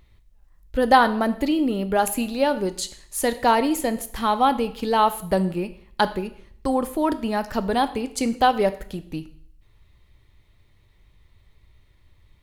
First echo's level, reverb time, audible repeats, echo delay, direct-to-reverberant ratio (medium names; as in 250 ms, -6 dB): no echo, 0.60 s, no echo, no echo, 11.0 dB